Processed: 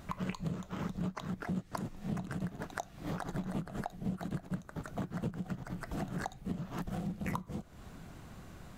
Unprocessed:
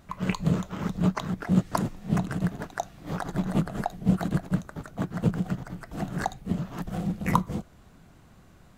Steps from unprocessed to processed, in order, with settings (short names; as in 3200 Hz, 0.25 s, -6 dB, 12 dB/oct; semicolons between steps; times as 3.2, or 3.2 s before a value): compressor 5:1, threshold -40 dBFS, peak gain reduction 21.5 dB; gain +4 dB